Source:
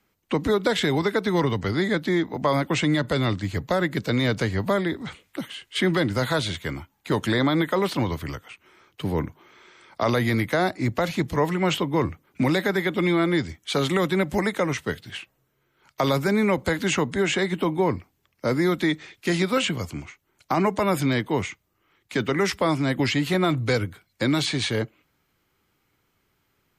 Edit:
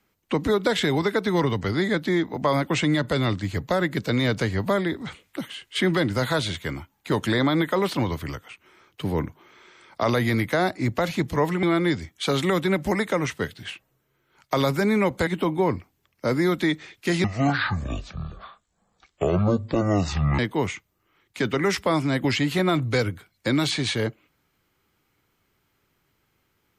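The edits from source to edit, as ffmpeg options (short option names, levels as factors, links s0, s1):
-filter_complex "[0:a]asplit=5[s0][s1][s2][s3][s4];[s0]atrim=end=11.632[s5];[s1]atrim=start=13.098:end=16.742[s6];[s2]atrim=start=17.468:end=19.444[s7];[s3]atrim=start=19.44:end=21.14,asetpts=PTS-STARTPTS,asetrate=23814,aresample=44100,atrim=end_sample=138833,asetpts=PTS-STARTPTS[s8];[s4]atrim=start=21.136[s9];[s5][s6]acrossfade=d=0.004:c1=hsin:c2=hsin[s10];[s10][s7]acrossfade=d=0.004:c1=hsin:c2=hsin[s11];[s11][s8]acrossfade=d=0.004:c1=hsin:c2=hsin[s12];[s12][s9]acrossfade=d=0.004:c1=hsin:c2=hsin"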